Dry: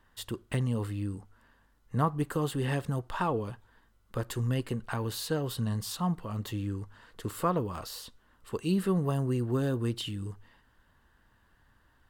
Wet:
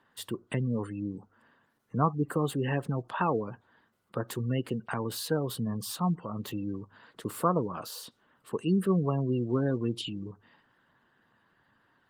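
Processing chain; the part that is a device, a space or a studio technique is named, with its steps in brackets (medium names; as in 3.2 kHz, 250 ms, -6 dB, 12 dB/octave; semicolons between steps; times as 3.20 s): 7.54–8.01 s: band-stop 1.9 kHz, Q 7.8; noise-suppressed video call (high-pass 130 Hz 24 dB/octave; spectral gate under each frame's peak -25 dB strong; trim +2 dB; Opus 24 kbps 48 kHz)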